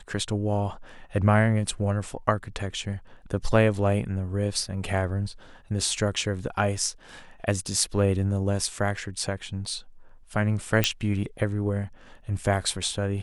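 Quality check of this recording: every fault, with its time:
10.84 pop -5 dBFS

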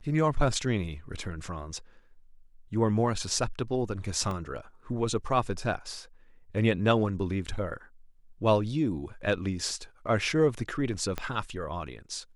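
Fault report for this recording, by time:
4.31 gap 2.2 ms
11.18 pop -17 dBFS

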